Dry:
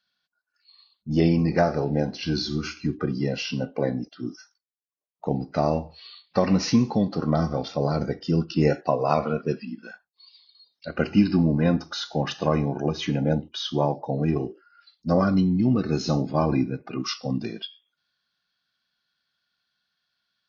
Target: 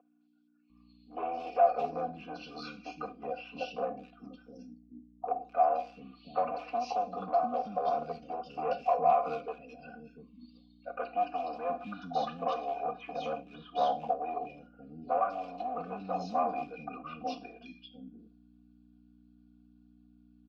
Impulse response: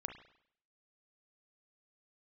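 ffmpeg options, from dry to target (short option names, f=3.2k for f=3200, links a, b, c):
-filter_complex "[0:a]aeval=exprs='val(0)+0.0141*(sin(2*PI*60*n/s)+sin(2*PI*2*60*n/s)/2+sin(2*PI*3*60*n/s)/3+sin(2*PI*4*60*n/s)/4+sin(2*PI*5*60*n/s)/5)':c=same,asoftclip=type=hard:threshold=-19dB,asplit=3[a][b][c];[a]bandpass=f=730:t=q:w=8,volume=0dB[d];[b]bandpass=f=1.09k:t=q:w=8,volume=-6dB[e];[c]bandpass=f=2.44k:t=q:w=8,volume=-9dB[f];[d][e][f]amix=inputs=3:normalize=0,aecho=1:1:4.1:0.78,acrossover=split=290|2500[g][h][i];[i]adelay=210[j];[g]adelay=700[k];[k][h][j]amix=inputs=3:normalize=0,asplit=2[l][m];[1:a]atrim=start_sample=2205,atrim=end_sample=4410[n];[m][n]afir=irnorm=-1:irlink=0,volume=-2.5dB[o];[l][o]amix=inputs=2:normalize=0"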